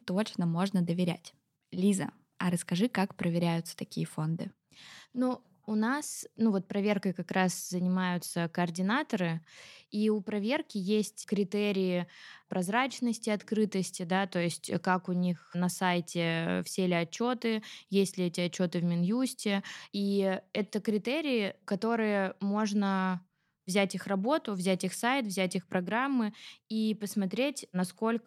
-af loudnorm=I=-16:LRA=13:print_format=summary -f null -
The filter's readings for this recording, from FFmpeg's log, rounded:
Input Integrated:    -31.6 LUFS
Input True Peak:     -13.4 dBTP
Input LRA:             1.3 LU
Input Threshold:     -41.8 LUFS